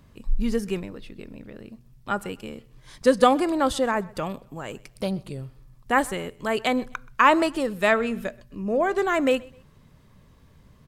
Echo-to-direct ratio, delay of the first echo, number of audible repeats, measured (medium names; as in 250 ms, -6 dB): -23.5 dB, 128 ms, 2